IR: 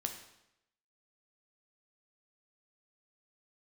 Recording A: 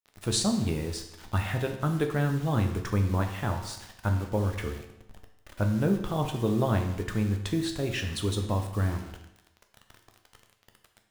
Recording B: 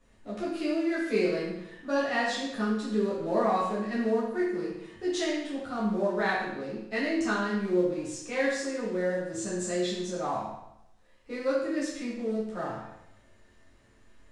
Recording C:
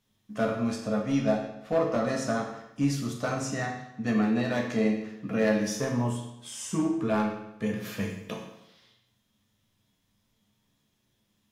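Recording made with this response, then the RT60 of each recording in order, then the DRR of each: A; 0.85, 0.85, 0.85 seconds; 4.0, −9.5, −0.5 decibels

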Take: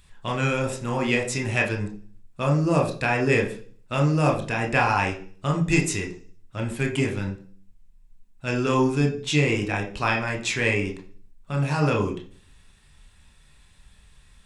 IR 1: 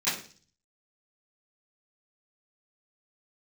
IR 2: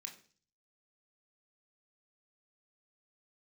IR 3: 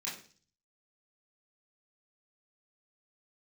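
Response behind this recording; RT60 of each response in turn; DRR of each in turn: 2; 0.40, 0.45, 0.40 seconds; −16.5, 1.5, −8.0 decibels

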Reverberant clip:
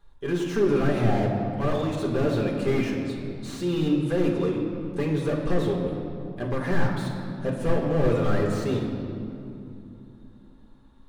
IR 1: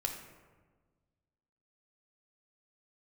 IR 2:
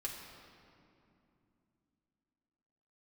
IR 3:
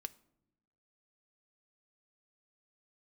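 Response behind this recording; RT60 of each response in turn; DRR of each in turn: 2; 1.4 s, 2.7 s, non-exponential decay; 2.5, −2.5, 9.5 decibels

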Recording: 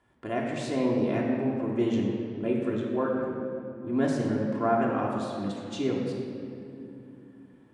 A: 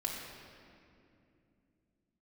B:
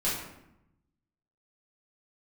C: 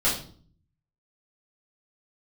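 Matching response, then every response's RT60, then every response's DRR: A; 2.6, 0.85, 0.50 seconds; −3.0, −8.5, −8.5 decibels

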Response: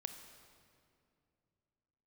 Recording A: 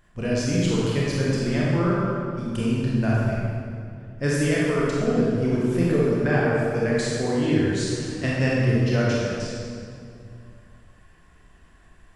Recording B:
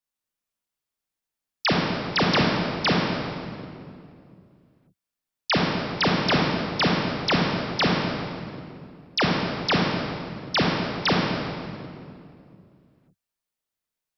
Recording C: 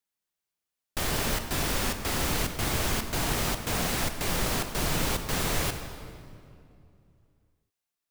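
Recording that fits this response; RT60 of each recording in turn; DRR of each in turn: C; 2.4, 2.5, 2.5 seconds; −6.5, −2.0, 7.0 decibels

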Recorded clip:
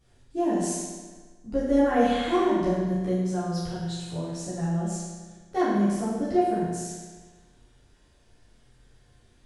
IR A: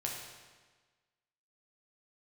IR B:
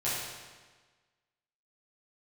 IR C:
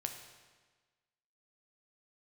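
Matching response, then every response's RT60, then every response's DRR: B; 1.4, 1.4, 1.4 seconds; −2.0, −11.0, 4.0 decibels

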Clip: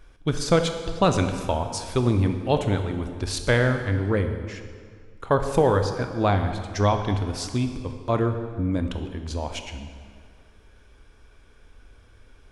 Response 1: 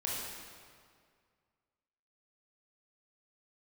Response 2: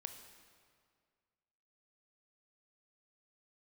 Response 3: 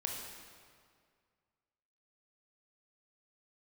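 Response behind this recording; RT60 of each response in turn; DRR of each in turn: 2; 2.0, 2.0, 2.0 seconds; −5.0, 6.5, 0.0 decibels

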